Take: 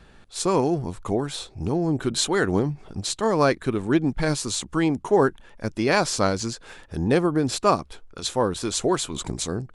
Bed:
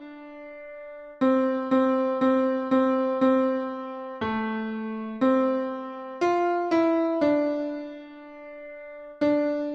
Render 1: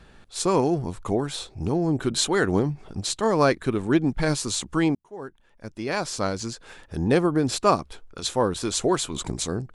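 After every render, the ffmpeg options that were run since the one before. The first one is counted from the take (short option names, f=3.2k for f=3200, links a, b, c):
-filter_complex "[0:a]asplit=2[a][b];[a]atrim=end=4.95,asetpts=PTS-STARTPTS,afade=t=out:st=4.946:d=0.004:c=hsin[c];[b]atrim=start=4.95,asetpts=PTS-STARTPTS,afade=t=in:d=2.16[d];[c][d]concat=n=2:v=0:a=1"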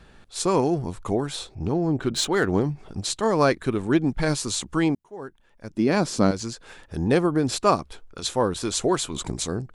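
-filter_complex "[0:a]asettb=1/sr,asplit=3[a][b][c];[a]atrim=end=1.554[d];[b]atrim=start=1.55:end=2.61,asetpts=PTS-STARTPTS,afade=t=in:d=0.004:c=qsin,afade=t=out:st=1.056:d=0.004:c=qsin,adynamicsmooth=sensitivity=4.5:basefreq=4.9k[e];[c]atrim=start=2.606[f];[d][e]acrossfade=d=0.004:c1=hsin:c2=qsin[g];[g][f]acrossfade=d=0.004:c1=qsin:c2=hsin,asettb=1/sr,asplit=3[h][i][j];[h]atrim=end=5.704[k];[i]atrim=start=5.7:end=6.31,asetpts=PTS-STARTPTS,afade=t=in:d=0.004:c=qsin,afade=t=out:st=0.606:d=0.004:c=qsin,equalizer=f=230:w=0.78:g=13[l];[j]atrim=start=6.306[m];[k][l]acrossfade=d=0.004:c1=hsin:c2=qsin[n];[n][m]acrossfade=d=0.004:c1=qsin:c2=hsin"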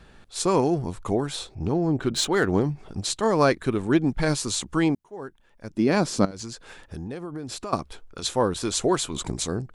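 -filter_complex "[0:a]asettb=1/sr,asplit=3[a][b][c];[a]atrim=end=6.254[d];[b]atrim=start=6.25:end=7.73,asetpts=PTS-STARTPTS,afade=t=in:d=0.004:c=qsin,afade=t=out:st=1.476:d=0.004:c=qsin,acompressor=threshold=-31dB:ratio=6:attack=3.2:release=140:knee=1:detection=peak[e];[c]atrim=start=7.726[f];[d][e]acrossfade=d=0.004:c1=hsin:c2=qsin[g];[g][f]acrossfade=d=0.004:c1=qsin:c2=hsin"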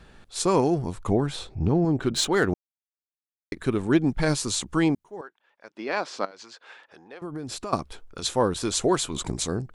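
-filter_complex "[0:a]asettb=1/sr,asplit=3[a][b][c];[a]atrim=end=1.074[d];[b]atrim=start=1.07:end=1.85,asetpts=PTS-STARTPTS,afade=t=in:d=0.004:c=qsin,afade=t=out:st=0.776:d=0.004:c=qsin,bass=f=250:g=5,treble=f=4k:g=-6[e];[c]atrim=start=1.846[f];[d][e]acrossfade=d=0.004:c1=hsin:c2=qsin[g];[g][f]acrossfade=d=0.004:c1=qsin:c2=hsin,asettb=1/sr,asplit=3[h][i][j];[h]atrim=end=5.214[k];[i]atrim=start=5.21:end=7.22,asetpts=PTS-STARTPTS,afade=t=in:d=0.004:c=qsin,afade=t=out:st=2.006:d=0.004:c=qsin,highpass=660,lowpass=3.7k[l];[j]atrim=start=7.216[m];[k][l]acrossfade=d=0.004:c1=hsin:c2=qsin[n];[n][m]acrossfade=d=0.004:c1=qsin:c2=hsin,asplit=3[o][p][q];[o]atrim=end=2.54,asetpts=PTS-STARTPTS,afade=t=out:st=2.536:d=0.004:c=hsin[r];[p]atrim=start=2.54:end=3.52,asetpts=PTS-STARTPTS,volume=0[s];[q]atrim=start=3.52,asetpts=PTS-STARTPTS,afade=t=in:d=0.004:c=hsin[t];[r][s][t]concat=n=3:v=0:a=1"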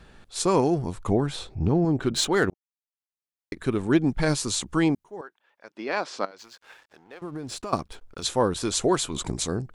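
-filter_complex "[0:a]asettb=1/sr,asplit=3[a][b][c];[a]atrim=end=6.384[d];[b]atrim=start=6.38:end=8.24,asetpts=PTS-STARTPTS,afade=t=in:d=0.004:c=qsin,afade=t=out:st=1.856:d=0.004:c=qsin,aeval=exprs='sgn(val(0))*max(abs(val(0))-0.00158,0)':c=same[e];[c]atrim=start=8.236[f];[d][e]acrossfade=d=0.004:c1=hsin:c2=qsin[g];[g][f]acrossfade=d=0.004:c1=qsin:c2=hsin,asplit=2[h][i];[h]atrim=end=2.5,asetpts=PTS-STARTPTS,afade=t=out:st=2.496:d=0.004:c=hsin[j];[i]atrim=start=2.5,asetpts=PTS-STARTPTS,afade=t=in:d=1.56:c=qsin[k];[j][k]concat=n=2:v=0:a=1"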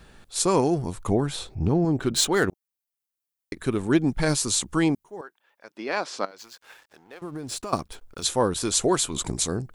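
-af "highshelf=f=8.7k:g=11.5"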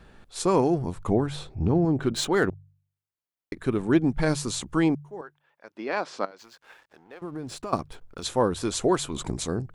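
-af "highshelf=f=3.8k:g=-11,bandreject=f=48.74:t=h:w=4,bandreject=f=97.48:t=h:w=4,bandreject=f=146.22:t=h:w=4"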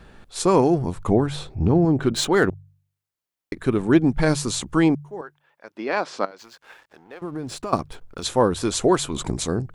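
-af "volume=4.5dB"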